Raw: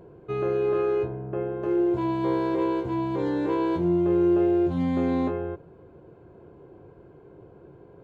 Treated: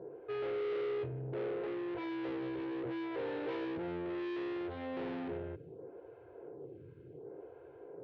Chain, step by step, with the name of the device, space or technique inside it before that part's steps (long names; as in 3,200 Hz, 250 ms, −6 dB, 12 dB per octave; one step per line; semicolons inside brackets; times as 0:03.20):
vibe pedal into a guitar amplifier (phaser with staggered stages 0.69 Hz; tube saturation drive 39 dB, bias 0.35; loudspeaker in its box 100–3,700 Hz, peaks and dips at 120 Hz +3 dB, 200 Hz −9 dB, 460 Hz +7 dB, 1,100 Hz −7 dB)
level +1 dB